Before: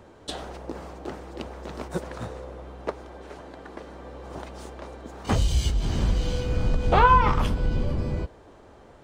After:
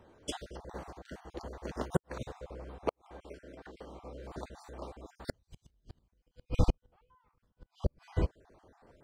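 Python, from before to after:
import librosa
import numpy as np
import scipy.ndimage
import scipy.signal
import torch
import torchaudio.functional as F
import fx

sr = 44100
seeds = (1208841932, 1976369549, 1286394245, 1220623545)

y = fx.spec_dropout(x, sr, seeds[0], share_pct=38)
y = fx.gate_flip(y, sr, shuts_db=-17.0, range_db=-40)
y = fx.upward_expand(y, sr, threshold_db=-50.0, expansion=1.5)
y = F.gain(torch.from_numpy(y), 4.0).numpy()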